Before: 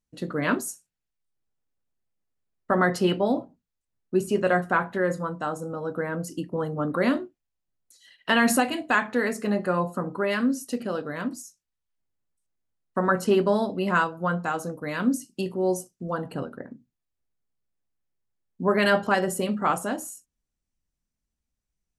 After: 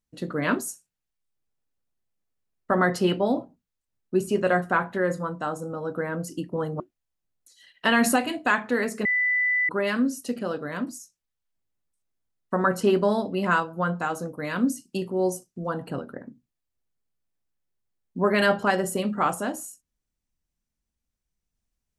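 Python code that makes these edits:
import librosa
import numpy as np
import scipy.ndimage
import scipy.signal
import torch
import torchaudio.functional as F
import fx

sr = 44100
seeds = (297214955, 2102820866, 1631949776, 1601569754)

y = fx.edit(x, sr, fx.cut(start_s=6.8, length_s=0.44),
    fx.bleep(start_s=9.49, length_s=0.64, hz=1990.0, db=-20.0), tone=tone)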